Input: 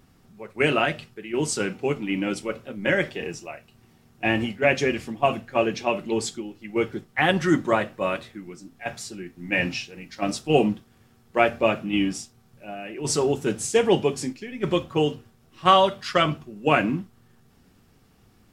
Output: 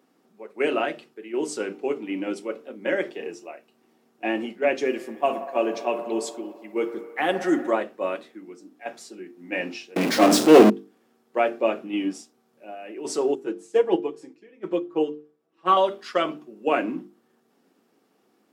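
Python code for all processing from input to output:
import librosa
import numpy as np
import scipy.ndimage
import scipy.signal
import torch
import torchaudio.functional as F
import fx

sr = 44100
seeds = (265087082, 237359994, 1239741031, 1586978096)

y = fx.chain(x, sr, fx.high_shelf(hz=9500.0, db=11.0),
    fx.echo_wet_bandpass(ms=60, feedback_pct=81, hz=880.0, wet_db=-11), at=(4.85, 7.71))
y = fx.chain(y, sr, fx.low_shelf(hz=230.0, db=10.0),
    fx.power_curve(exponent=0.35), at=(9.96, 10.7))
y = fx.chain(y, sr, fx.high_shelf(hz=2800.0, db=-8.0),
    fx.comb(ms=6.1, depth=0.73),
    fx.upward_expand(threshold_db=-31.0, expansion=1.5), at=(13.35, 15.77))
y = scipy.signal.sosfilt(scipy.signal.butter(4, 280.0, 'highpass', fs=sr, output='sos'), y)
y = fx.tilt_shelf(y, sr, db=5.5, hz=830.0)
y = fx.hum_notches(y, sr, base_hz=50, count=9)
y = y * 10.0 ** (-2.5 / 20.0)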